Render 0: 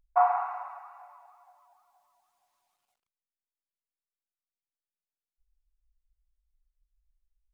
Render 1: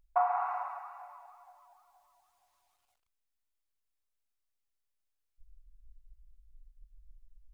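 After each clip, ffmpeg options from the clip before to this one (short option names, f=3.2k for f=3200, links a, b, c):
-af "acompressor=threshold=-29dB:ratio=3,asubboost=boost=8.5:cutoff=66,volume=2dB"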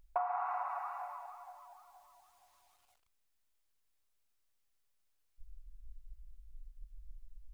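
-af "acompressor=threshold=-40dB:ratio=4,volume=5.5dB"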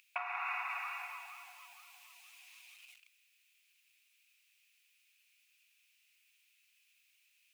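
-af "highpass=f=2.5k:t=q:w=7.1,volume=10.5dB"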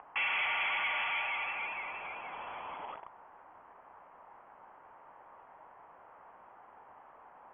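-filter_complex "[0:a]asplit=2[a][b];[b]highpass=f=720:p=1,volume=35dB,asoftclip=type=tanh:threshold=-21dB[c];[a][c]amix=inputs=2:normalize=0,lowpass=f=1k:p=1,volume=-6dB,lowpass=f=2.9k:t=q:w=0.5098,lowpass=f=2.9k:t=q:w=0.6013,lowpass=f=2.9k:t=q:w=0.9,lowpass=f=2.9k:t=q:w=2.563,afreqshift=-3400"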